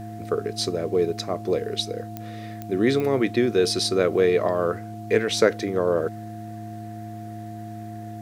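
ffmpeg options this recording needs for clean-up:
-af "adeclick=t=4,bandreject=f=108.2:t=h:w=4,bandreject=f=216.4:t=h:w=4,bandreject=f=324.6:t=h:w=4,bandreject=f=700:w=30"

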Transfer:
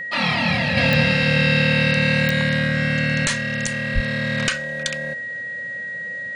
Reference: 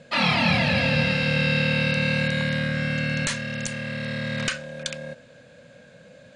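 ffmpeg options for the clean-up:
-filter_complex "[0:a]adeclick=t=4,bandreject=f=1.9k:w=30,asplit=3[a][b][c];[a]afade=t=out:st=3.94:d=0.02[d];[b]highpass=f=140:w=0.5412,highpass=f=140:w=1.3066,afade=t=in:st=3.94:d=0.02,afade=t=out:st=4.06:d=0.02[e];[c]afade=t=in:st=4.06:d=0.02[f];[d][e][f]amix=inputs=3:normalize=0,asetnsamples=n=441:p=0,asendcmd='0.77 volume volume -4.5dB',volume=0dB"

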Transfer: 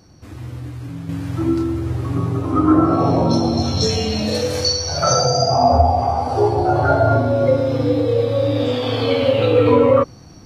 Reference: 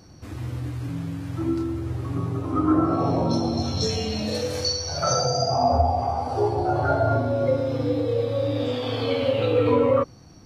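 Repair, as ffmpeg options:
-af "asetnsamples=n=441:p=0,asendcmd='1.09 volume volume -6.5dB',volume=0dB"

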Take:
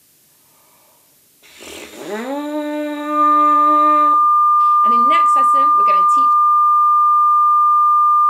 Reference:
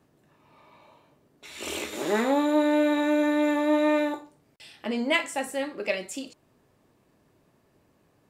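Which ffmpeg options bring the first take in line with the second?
-af "bandreject=f=1.2k:w=30,agate=range=-21dB:threshold=-45dB"

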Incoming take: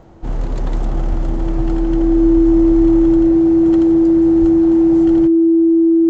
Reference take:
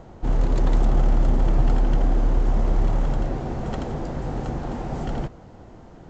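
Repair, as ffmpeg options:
-filter_complex "[0:a]bandreject=f=330:w=30,asplit=3[a][b][c];[a]afade=t=out:st=1.09:d=0.02[d];[b]highpass=f=140:w=0.5412,highpass=f=140:w=1.3066,afade=t=in:st=1.09:d=0.02,afade=t=out:st=1.21:d=0.02[e];[c]afade=t=in:st=1.21:d=0.02[f];[d][e][f]amix=inputs=3:normalize=0,asplit=3[g][h][i];[g]afade=t=out:st=4.4:d=0.02[j];[h]highpass=f=140:w=0.5412,highpass=f=140:w=1.3066,afade=t=in:st=4.4:d=0.02,afade=t=out:st=4.52:d=0.02[k];[i]afade=t=in:st=4.52:d=0.02[l];[j][k][l]amix=inputs=3:normalize=0"

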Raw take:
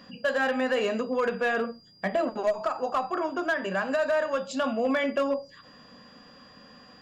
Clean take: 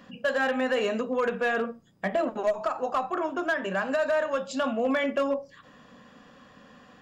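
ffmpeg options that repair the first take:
-af "bandreject=f=4.8k:w=30"

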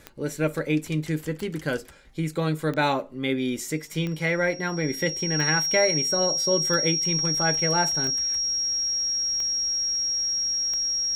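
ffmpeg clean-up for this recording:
-af "adeclick=t=4,bandreject=f=5.6k:w=30"

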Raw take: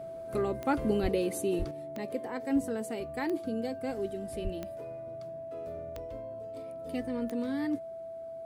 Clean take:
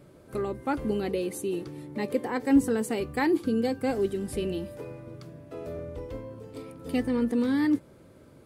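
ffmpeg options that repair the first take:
-filter_complex "[0:a]adeclick=t=4,bandreject=f=660:w=30,asplit=3[a][b][c];[a]afade=t=out:st=1.02:d=0.02[d];[b]highpass=f=140:w=0.5412,highpass=f=140:w=1.3066,afade=t=in:st=1.02:d=0.02,afade=t=out:st=1.14:d=0.02[e];[c]afade=t=in:st=1.14:d=0.02[f];[d][e][f]amix=inputs=3:normalize=0,asplit=3[g][h][i];[g]afade=t=out:st=1.58:d=0.02[j];[h]highpass=f=140:w=0.5412,highpass=f=140:w=1.3066,afade=t=in:st=1.58:d=0.02,afade=t=out:st=1.7:d=0.02[k];[i]afade=t=in:st=1.7:d=0.02[l];[j][k][l]amix=inputs=3:normalize=0,asplit=3[m][n][o];[m]afade=t=out:st=4.43:d=0.02[p];[n]highpass=f=140:w=0.5412,highpass=f=140:w=1.3066,afade=t=in:st=4.43:d=0.02,afade=t=out:st=4.55:d=0.02[q];[o]afade=t=in:st=4.55:d=0.02[r];[p][q][r]amix=inputs=3:normalize=0,asetnsamples=n=441:p=0,asendcmd='1.71 volume volume 8dB',volume=0dB"

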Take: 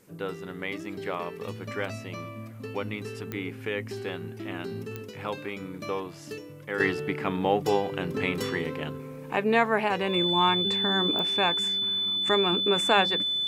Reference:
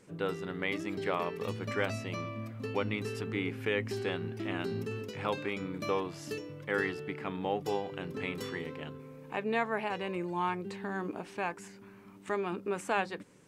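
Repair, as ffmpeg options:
-af "adeclick=t=4,bandreject=f=3.5k:w=30,agate=range=-21dB:threshold=-33dB,asetnsamples=n=441:p=0,asendcmd='6.8 volume volume -8.5dB',volume=0dB"

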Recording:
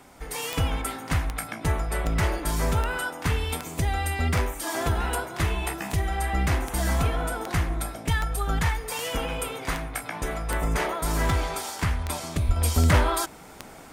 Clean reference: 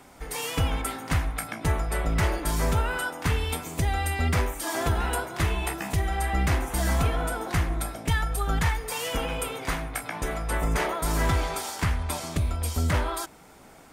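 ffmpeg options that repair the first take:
-filter_complex "[0:a]adeclick=t=4,asplit=3[a][b][c];[a]afade=t=out:st=12.46:d=0.02[d];[b]highpass=f=140:w=0.5412,highpass=f=140:w=1.3066,afade=t=in:st=12.46:d=0.02,afade=t=out:st=12.58:d=0.02[e];[c]afade=t=in:st=12.58:d=0.02[f];[d][e][f]amix=inputs=3:normalize=0,asetnsamples=n=441:p=0,asendcmd='12.56 volume volume -5.5dB',volume=0dB"

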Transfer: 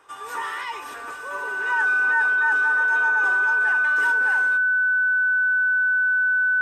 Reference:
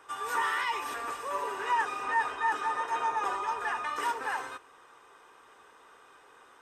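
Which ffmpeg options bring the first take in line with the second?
-af "bandreject=f=1.5k:w=30"

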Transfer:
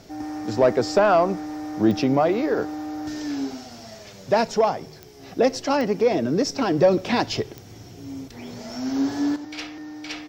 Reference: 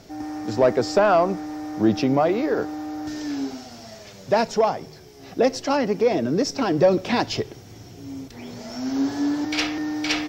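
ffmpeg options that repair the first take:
-af "adeclick=t=4,asetnsamples=n=441:p=0,asendcmd='9.36 volume volume 10dB',volume=0dB"

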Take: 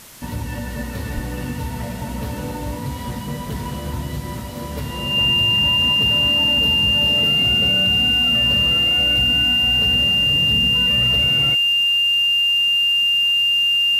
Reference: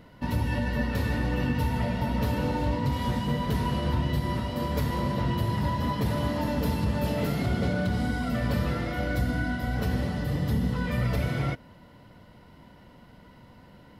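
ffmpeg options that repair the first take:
-filter_complex "[0:a]adeclick=t=4,bandreject=f=2.8k:w=30,asplit=3[a][b][c];[a]afade=t=out:st=1.14:d=0.02[d];[b]highpass=f=140:w=0.5412,highpass=f=140:w=1.3066,afade=t=in:st=1.14:d=0.02,afade=t=out:st=1.26:d=0.02[e];[c]afade=t=in:st=1.26:d=0.02[f];[d][e][f]amix=inputs=3:normalize=0,afwtdn=0.0089"

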